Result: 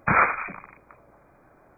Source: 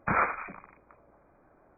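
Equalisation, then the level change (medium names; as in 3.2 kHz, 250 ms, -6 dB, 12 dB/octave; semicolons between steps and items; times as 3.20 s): peaking EQ 130 Hz +4.5 dB 0.69 oct; treble shelf 2.2 kHz +10.5 dB; +4.0 dB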